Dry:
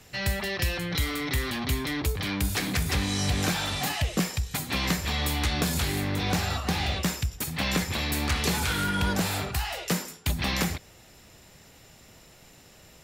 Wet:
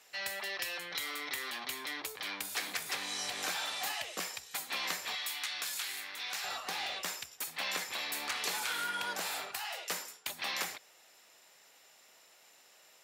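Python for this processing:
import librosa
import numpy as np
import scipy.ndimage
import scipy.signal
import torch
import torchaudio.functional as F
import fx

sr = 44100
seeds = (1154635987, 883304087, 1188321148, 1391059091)

y = fx.highpass(x, sr, hz=fx.steps((0.0, 640.0), (5.15, 1400.0), (6.44, 650.0)), slope=12)
y = y * librosa.db_to_amplitude(-6.0)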